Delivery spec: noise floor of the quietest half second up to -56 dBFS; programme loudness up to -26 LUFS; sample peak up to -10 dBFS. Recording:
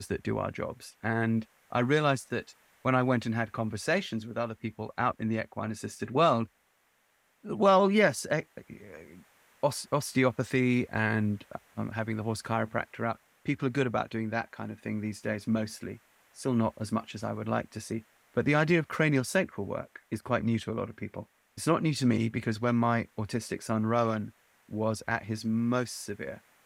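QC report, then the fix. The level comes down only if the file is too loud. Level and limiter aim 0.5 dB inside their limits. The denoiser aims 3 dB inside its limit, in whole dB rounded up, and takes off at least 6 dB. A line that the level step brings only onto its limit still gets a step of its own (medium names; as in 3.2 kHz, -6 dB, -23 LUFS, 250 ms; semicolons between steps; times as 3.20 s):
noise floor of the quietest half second -70 dBFS: pass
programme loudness -30.0 LUFS: pass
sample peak -10.5 dBFS: pass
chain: none needed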